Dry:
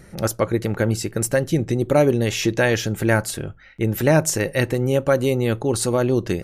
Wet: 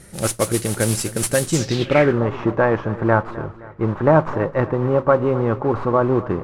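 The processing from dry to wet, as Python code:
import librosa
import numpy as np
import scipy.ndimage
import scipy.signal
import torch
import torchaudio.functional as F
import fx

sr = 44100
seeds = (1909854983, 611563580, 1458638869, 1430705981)

p1 = fx.tracing_dist(x, sr, depth_ms=0.12)
p2 = fx.mod_noise(p1, sr, seeds[0], snr_db=11)
p3 = p2 + fx.echo_feedback(p2, sr, ms=260, feedback_pct=49, wet_db=-17.5, dry=0)
y = fx.filter_sweep_lowpass(p3, sr, from_hz=10000.0, to_hz=1100.0, start_s=1.44, end_s=2.22, q=3.5)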